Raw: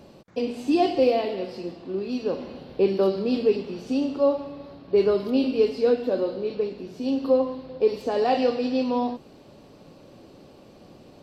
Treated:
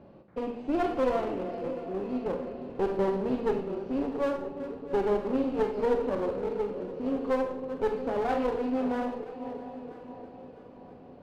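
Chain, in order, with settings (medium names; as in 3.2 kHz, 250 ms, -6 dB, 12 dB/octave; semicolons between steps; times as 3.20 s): backward echo that repeats 342 ms, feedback 66%, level -13 dB; low-pass 1.7 kHz 12 dB/octave; one-sided clip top -29 dBFS; on a send: multi-head delay 325 ms, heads second and third, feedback 47%, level -20 dB; on the sum: Schroeder reverb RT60 0.46 s, combs from 32 ms, DRR 7 dB; trim -4 dB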